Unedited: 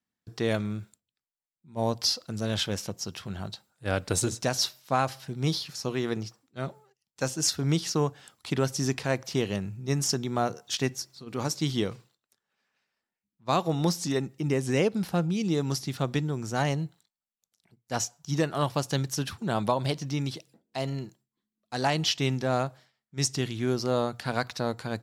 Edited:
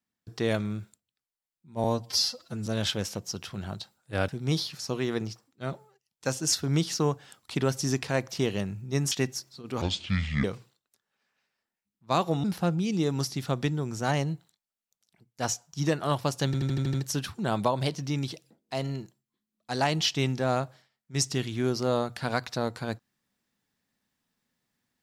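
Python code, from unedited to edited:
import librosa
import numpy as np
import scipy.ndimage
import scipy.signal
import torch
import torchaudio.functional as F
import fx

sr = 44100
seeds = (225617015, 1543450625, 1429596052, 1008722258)

y = fx.edit(x, sr, fx.stretch_span(start_s=1.84, length_s=0.55, factor=1.5),
    fx.cut(start_s=4.01, length_s=1.23),
    fx.cut(start_s=10.07, length_s=0.67),
    fx.speed_span(start_s=11.44, length_s=0.38, speed=0.61),
    fx.cut(start_s=13.82, length_s=1.13),
    fx.stutter(start_s=18.97, slice_s=0.08, count=7), tone=tone)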